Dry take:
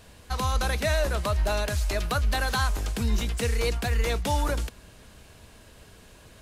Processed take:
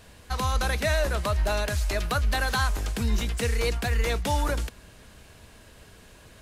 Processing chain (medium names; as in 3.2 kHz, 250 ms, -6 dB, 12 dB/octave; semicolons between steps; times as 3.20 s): peaking EQ 1.8 kHz +2 dB